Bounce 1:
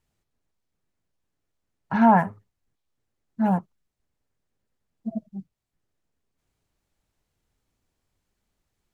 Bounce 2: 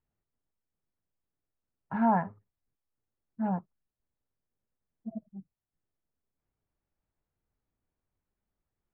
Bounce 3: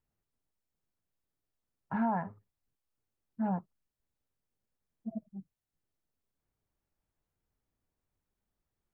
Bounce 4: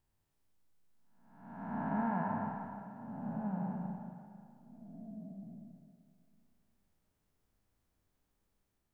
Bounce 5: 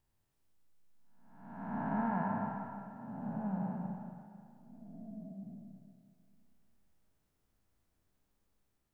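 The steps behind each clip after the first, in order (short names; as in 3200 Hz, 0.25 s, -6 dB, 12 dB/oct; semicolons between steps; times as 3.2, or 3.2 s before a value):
LPF 1800 Hz 12 dB/oct; gain -8.5 dB
compressor, threshold -27 dBFS, peak gain reduction 7 dB
time blur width 0.657 s; Schroeder reverb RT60 2.4 s, combs from 30 ms, DRR 4 dB; gain +6 dB
resonator 65 Hz, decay 1.8 s, harmonics all, mix 60%; gain +7.5 dB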